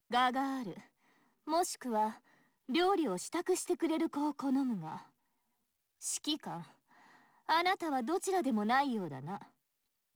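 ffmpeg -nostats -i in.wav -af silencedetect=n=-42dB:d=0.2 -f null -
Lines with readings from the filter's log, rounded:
silence_start: 0.78
silence_end: 1.47 | silence_duration: 0.70
silence_start: 2.12
silence_end: 2.69 | silence_duration: 0.57
silence_start: 4.98
silence_end: 6.03 | silence_duration: 1.06
silence_start: 6.62
silence_end: 7.49 | silence_duration: 0.87
silence_start: 9.42
silence_end: 10.15 | silence_duration: 0.73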